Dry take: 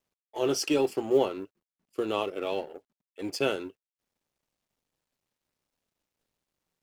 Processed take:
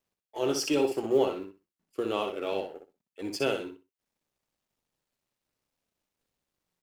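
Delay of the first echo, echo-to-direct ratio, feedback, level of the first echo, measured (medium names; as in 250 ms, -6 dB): 62 ms, -6.5 dB, 19%, -6.5 dB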